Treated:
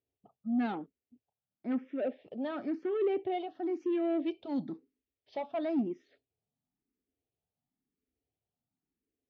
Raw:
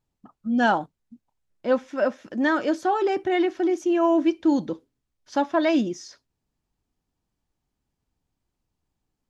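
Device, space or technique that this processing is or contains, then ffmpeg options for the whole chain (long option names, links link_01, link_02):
barber-pole phaser into a guitar amplifier: -filter_complex "[0:a]lowpass=5500,asplit=2[link_01][link_02];[link_02]afreqshift=0.98[link_03];[link_01][link_03]amix=inputs=2:normalize=1,asoftclip=type=tanh:threshold=-22dB,highpass=79,equalizer=frequency=260:width_type=q:width=4:gain=7,equalizer=frequency=430:width_type=q:width=4:gain=8,equalizer=frequency=700:width_type=q:width=4:gain=5,equalizer=frequency=1000:width_type=q:width=4:gain=-10,equalizer=frequency=1500:width_type=q:width=4:gain=-8,lowpass=frequency=3500:width=0.5412,lowpass=frequency=3500:width=1.3066,asettb=1/sr,asplit=3[link_04][link_05][link_06];[link_04]atrim=end=3.664[link_07];[link_05]atrim=start=3.66:end=5.38,asetpts=PTS-STARTPTS,afade=type=in:duration=0.004:curve=qsin,afade=type=out:start_time=1.716:duration=0.004:curve=qsin,highshelf=frequency=3600:gain=9[link_08];[link_06]atrim=start=5.376[link_09];[link_07][link_08]acrossfade=duration=0.004:curve1=hsin:curve2=qsin[link_10];[link_10][link_09]acrossfade=duration=0.004:curve1=qsin:curve2=hsin,volume=-8dB"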